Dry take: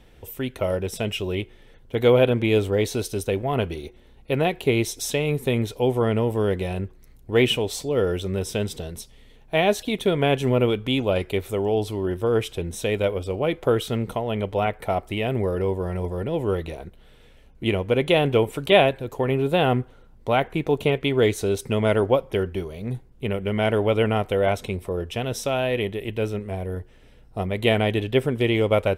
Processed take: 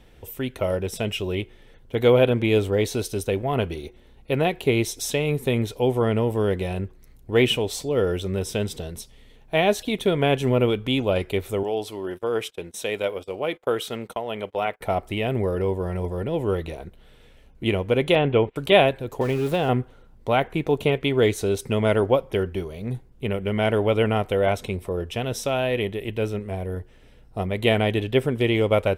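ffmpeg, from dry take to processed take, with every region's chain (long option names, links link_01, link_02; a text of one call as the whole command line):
ffmpeg -i in.wav -filter_complex "[0:a]asettb=1/sr,asplit=3[link_01][link_02][link_03];[link_01]atrim=end=11.634[link_04];[link_02]atrim=start=11.63:end=14.81,asetpts=PTS-STARTPTS,afade=type=in:duration=0.004:curve=qsin,afade=type=out:start_time=3.176:duration=0.004:curve=qsin,highpass=frequency=500:poles=1,agate=range=-25dB:threshold=-40dB:ratio=16:release=100:detection=peak[link_05];[link_03]atrim=start=14.806[link_06];[link_04][link_05]acrossfade=duration=0.004:curve1=hsin:curve2=qsin[link_07];[link_07][link_06]acrossfade=duration=0.004:curve1=qsin:curve2=hsin,asettb=1/sr,asplit=3[link_08][link_09][link_10];[link_08]atrim=end=18.154[link_11];[link_09]atrim=start=18.15:end=18.56,asetpts=PTS-STARTPTS,afade=type=in:duration=0.004:curve=qsin,afade=type=out:start_time=0.406:duration=0.004:curve=qsin,lowpass=frequency=3300:width=0.5412,lowpass=frequency=3300:width=1.3066,agate=range=-21dB:threshold=-32dB:ratio=16:release=100:detection=peak[link_12];[link_10]atrim=start=18.556[link_13];[link_11][link_12]acrossfade=duration=0.004:curve1=hsin:curve2=qsin[link_14];[link_14][link_13]acrossfade=duration=0.004:curve1=qsin:curve2=hsin,asettb=1/sr,asplit=3[link_15][link_16][link_17];[link_15]atrim=end=19.214[link_18];[link_16]atrim=start=19.21:end=19.69,asetpts=PTS-STARTPTS,afade=type=in:duration=0.004:curve=qsin,afade=type=out:start_time=0.476:duration=0.004:curve=qsin,aeval=exprs='val(0)+0.5*0.0251*sgn(val(0))':channel_layout=same,acrossover=split=1000|2400[link_19][link_20][link_21];[link_19]acompressor=threshold=-20dB:ratio=4[link_22];[link_20]acompressor=threshold=-36dB:ratio=4[link_23];[link_21]acompressor=threshold=-35dB:ratio=4[link_24];[link_22][link_23][link_24]amix=inputs=3:normalize=0[link_25];[link_17]atrim=start=19.686[link_26];[link_18][link_25]acrossfade=duration=0.004:curve1=hsin:curve2=qsin[link_27];[link_27][link_26]acrossfade=duration=0.004:curve1=qsin:curve2=hsin" out.wav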